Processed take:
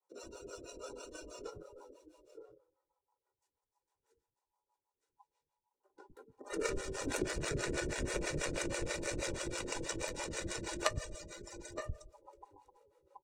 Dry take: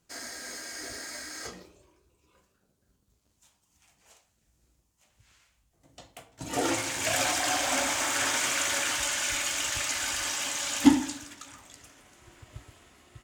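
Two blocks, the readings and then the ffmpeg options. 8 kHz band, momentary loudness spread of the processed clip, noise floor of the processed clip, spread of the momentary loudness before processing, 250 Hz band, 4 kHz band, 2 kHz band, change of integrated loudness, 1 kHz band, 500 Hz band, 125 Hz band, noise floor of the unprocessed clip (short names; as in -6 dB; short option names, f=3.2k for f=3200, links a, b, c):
-14.0 dB, 21 LU, under -85 dBFS, 16 LU, -14.0 dB, -14.0 dB, -11.5 dB, -12.0 dB, -12.0 dB, -2.5 dB, +1.0 dB, -73 dBFS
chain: -filter_complex "[0:a]aecho=1:1:2.1:0.76,asplit=2[a][b];[b]aecho=0:1:918:0.398[c];[a][c]amix=inputs=2:normalize=0,acrossover=split=850|3200[d][e][f];[d]acompressor=threshold=-44dB:ratio=4[g];[e]acompressor=threshold=-35dB:ratio=4[h];[f]acompressor=threshold=-34dB:ratio=4[i];[g][h][i]amix=inputs=3:normalize=0,aeval=exprs='0.141*(cos(1*acos(clip(val(0)/0.141,-1,1)))-cos(1*PI/2))+0.0355*(cos(3*acos(clip(val(0)/0.141,-1,1)))-cos(3*PI/2))':c=same,asplit=2[j][k];[k]adynamicsmooth=sensitivity=5:basefreq=700,volume=2dB[l];[j][l]amix=inputs=2:normalize=0,aeval=exprs='val(0)*sin(2*PI*910*n/s)':c=same,lowshelf=f=640:t=q:w=1.5:g=8.5,bandreject=f=3.2k:w=13,afftdn=nr=17:nf=-53,equalizer=f=990:w=2.5:g=3.5,acrossover=split=220[m][n];[m]adelay=110[o];[o][n]amix=inputs=2:normalize=0,acrossover=split=450[p][q];[p]aeval=exprs='val(0)*(1-1/2+1/2*cos(2*PI*6.2*n/s))':c=same[r];[q]aeval=exprs='val(0)*(1-1/2-1/2*cos(2*PI*6.2*n/s))':c=same[s];[r][s]amix=inputs=2:normalize=0,volume=8dB"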